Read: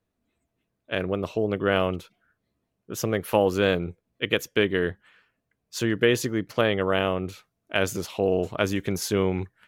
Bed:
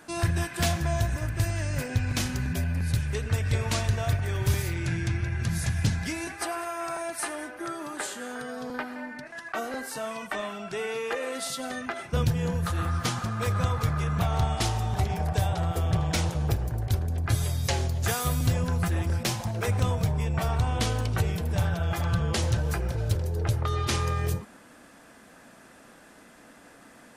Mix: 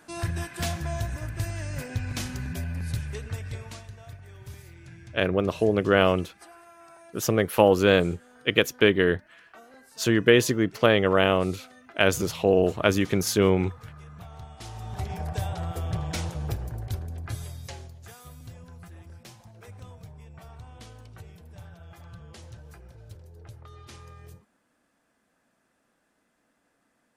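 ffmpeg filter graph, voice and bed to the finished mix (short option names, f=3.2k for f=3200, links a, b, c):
-filter_complex "[0:a]adelay=4250,volume=3dB[a];[1:a]volume=9.5dB,afade=t=out:st=2.99:d=0.87:silence=0.199526,afade=t=in:st=14.57:d=0.59:silence=0.211349,afade=t=out:st=16.71:d=1.3:silence=0.177828[b];[a][b]amix=inputs=2:normalize=0"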